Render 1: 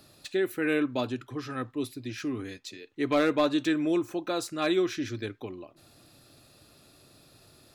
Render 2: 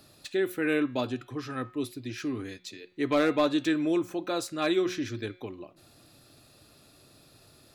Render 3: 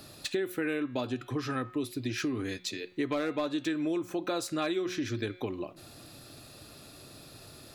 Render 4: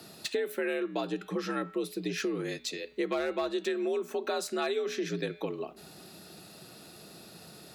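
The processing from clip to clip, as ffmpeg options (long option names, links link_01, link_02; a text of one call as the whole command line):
ffmpeg -i in.wav -af "bandreject=frequency=181.2:width_type=h:width=4,bandreject=frequency=362.4:width_type=h:width=4,bandreject=frequency=543.6:width_type=h:width=4,bandreject=frequency=724.8:width_type=h:width=4,bandreject=frequency=906:width_type=h:width=4,bandreject=frequency=1087.2:width_type=h:width=4,bandreject=frequency=1268.4:width_type=h:width=4,bandreject=frequency=1449.6:width_type=h:width=4,bandreject=frequency=1630.8:width_type=h:width=4,bandreject=frequency=1812:width_type=h:width=4,bandreject=frequency=1993.2:width_type=h:width=4,bandreject=frequency=2174.4:width_type=h:width=4,bandreject=frequency=2355.6:width_type=h:width=4,bandreject=frequency=2536.8:width_type=h:width=4,bandreject=frequency=2718:width_type=h:width=4,bandreject=frequency=2899.2:width_type=h:width=4,bandreject=frequency=3080.4:width_type=h:width=4,bandreject=frequency=3261.6:width_type=h:width=4,bandreject=frequency=3442.8:width_type=h:width=4,bandreject=frequency=3624:width_type=h:width=4,bandreject=frequency=3805.2:width_type=h:width=4,bandreject=frequency=3986.4:width_type=h:width=4,bandreject=frequency=4167.6:width_type=h:width=4,bandreject=frequency=4348.8:width_type=h:width=4,bandreject=frequency=4530:width_type=h:width=4,bandreject=frequency=4711.2:width_type=h:width=4" out.wav
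ffmpeg -i in.wav -af "acompressor=threshold=-36dB:ratio=6,volume=7dB" out.wav
ffmpeg -i in.wav -af "afreqshift=60" out.wav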